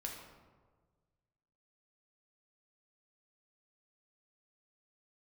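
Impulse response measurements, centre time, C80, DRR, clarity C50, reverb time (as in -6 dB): 51 ms, 5.5 dB, -0.5 dB, 3.5 dB, 1.5 s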